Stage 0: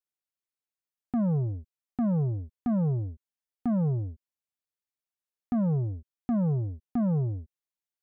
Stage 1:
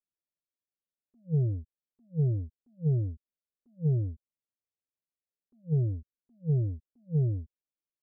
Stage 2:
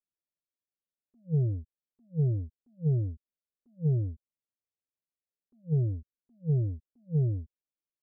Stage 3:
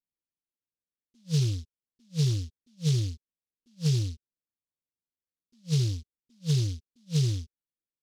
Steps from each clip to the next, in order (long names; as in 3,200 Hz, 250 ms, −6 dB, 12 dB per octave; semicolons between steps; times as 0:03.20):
elliptic low-pass filter 620 Hz, stop band 40 dB; flanger swept by the level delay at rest 11.9 ms, full sweep at −28 dBFS; level that may rise only so fast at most 390 dB per second; level +2.5 dB
no processing that can be heard
Butterworth low-pass 540 Hz 72 dB per octave; notch filter 410 Hz, Q 12; short delay modulated by noise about 4,400 Hz, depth 0.19 ms; level +1.5 dB